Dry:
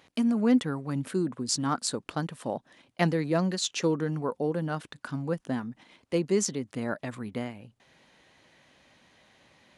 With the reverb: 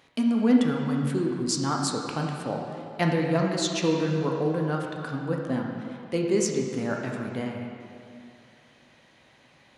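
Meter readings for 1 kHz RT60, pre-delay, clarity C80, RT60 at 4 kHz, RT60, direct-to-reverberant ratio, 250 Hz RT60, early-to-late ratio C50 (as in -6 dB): 2.5 s, 7 ms, 3.0 dB, 2.0 s, 2.5 s, 0.0 dB, 2.4 s, 2.0 dB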